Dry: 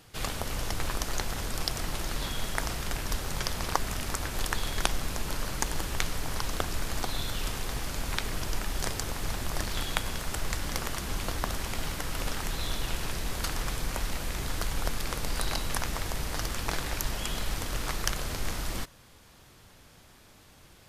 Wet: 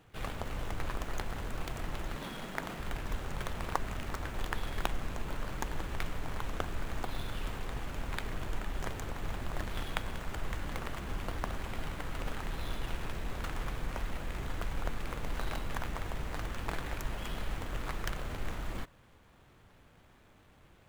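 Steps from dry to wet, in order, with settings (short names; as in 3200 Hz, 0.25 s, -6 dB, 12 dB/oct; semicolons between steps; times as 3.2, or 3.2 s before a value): median filter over 9 samples; 2.15–2.8 resonant low shelf 120 Hz -11.5 dB, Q 1.5; gain -4 dB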